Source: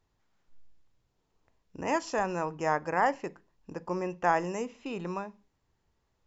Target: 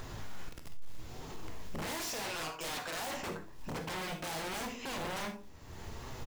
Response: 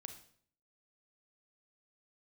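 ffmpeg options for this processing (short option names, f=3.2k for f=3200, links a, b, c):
-filter_complex "[0:a]asettb=1/sr,asplit=3[a][b][c];[a]atrim=end=2.284[d];[b]atrim=start=2.28:end=3.01,asetpts=PTS-STARTPTS,afade=t=in:d=0.004:c=qsin,afade=t=out:st=0.726:d=0.004:c=qsin,highpass=1k[e];[c]atrim=start=3.006[f];[d][e]acrossfade=d=0.004:c1=hsin:c2=qsin[g];[g][f]acrossfade=d=0.004:c1=qsin:c2=hsin,acompressor=mode=upward:threshold=-36dB:ratio=2.5,flanger=delay=7.4:depth=6:regen=56:speed=0.82:shape=triangular,asoftclip=type=hard:threshold=-39.5dB,acrusher=bits=5:mode=log:mix=0:aa=0.000001,aeval=exprs='0.0119*sin(PI/2*2.51*val(0)/0.0119)':c=same,asplit=2[h][i];[i]adelay=25,volume=-13.5dB[j];[h][j]amix=inputs=2:normalize=0[k];[1:a]atrim=start_sample=2205,atrim=end_sample=4410[l];[k][l]afir=irnorm=-1:irlink=0,volume=8.5dB"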